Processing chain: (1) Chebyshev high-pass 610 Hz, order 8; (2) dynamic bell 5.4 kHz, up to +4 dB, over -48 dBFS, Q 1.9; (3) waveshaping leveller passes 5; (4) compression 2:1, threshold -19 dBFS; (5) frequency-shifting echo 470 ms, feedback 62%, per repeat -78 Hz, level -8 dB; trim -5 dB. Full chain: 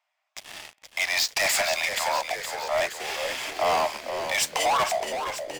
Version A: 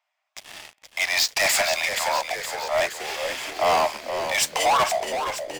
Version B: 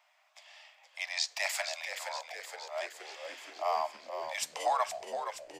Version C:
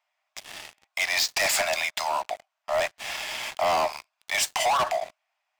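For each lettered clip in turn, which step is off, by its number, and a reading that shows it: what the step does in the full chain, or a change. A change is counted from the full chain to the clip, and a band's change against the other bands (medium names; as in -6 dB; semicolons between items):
4, momentary loudness spread change -7 LU; 3, crest factor change +8.5 dB; 5, echo-to-direct -6.0 dB to none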